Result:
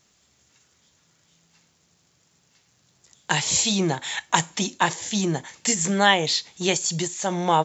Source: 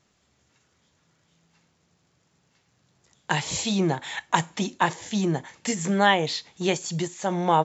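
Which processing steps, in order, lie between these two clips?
high shelf 3500 Hz +11.5 dB

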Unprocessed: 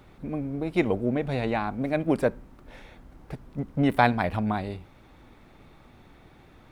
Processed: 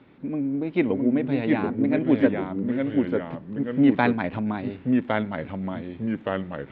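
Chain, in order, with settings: echoes that change speed 0.621 s, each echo -2 st, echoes 2; speaker cabinet 130–3500 Hz, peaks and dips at 270 Hz +8 dB, 730 Hz -6 dB, 1200 Hz -4 dB

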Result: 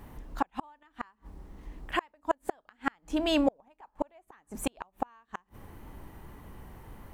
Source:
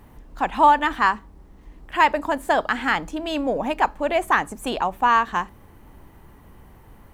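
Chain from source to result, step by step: wow and flutter 22 cents; 3.44–4.22 dynamic EQ 910 Hz, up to +8 dB, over -32 dBFS, Q 1.2; flipped gate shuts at -14 dBFS, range -40 dB

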